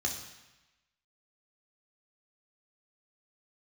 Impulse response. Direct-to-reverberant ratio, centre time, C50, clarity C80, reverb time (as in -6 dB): 0.0 dB, 31 ms, 6.5 dB, 8.5 dB, 1.0 s